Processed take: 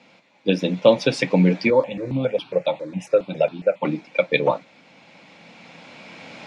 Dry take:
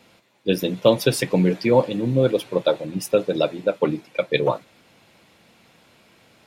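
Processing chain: recorder AGC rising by 7.6 dB/s; speaker cabinet 160–6500 Hz, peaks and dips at 170 Hz +7 dB, 270 Hz +5 dB, 380 Hz -5 dB, 550 Hz +4 dB, 840 Hz +5 dB, 2300 Hz +7 dB; 1.7–3.85 step phaser 7.3 Hz 730–2000 Hz; gain -1.5 dB

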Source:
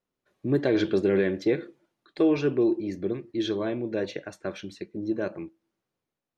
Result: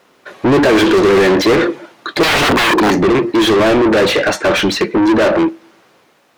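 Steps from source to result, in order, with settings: 2.23–2.92 wrapped overs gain 27 dB; overdrive pedal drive 38 dB, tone 2500 Hz, clips at -12.5 dBFS; gain +8.5 dB

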